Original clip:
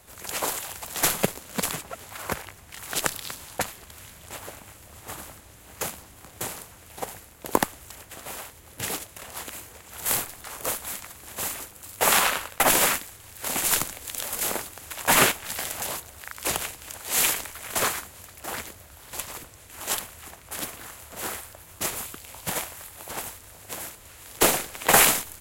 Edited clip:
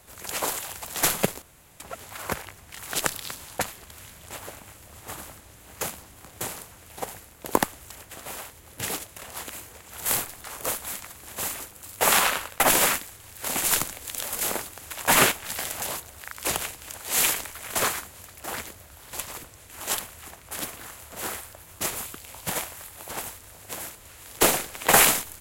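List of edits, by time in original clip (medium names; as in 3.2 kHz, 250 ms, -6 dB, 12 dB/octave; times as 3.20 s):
1.42–1.80 s: room tone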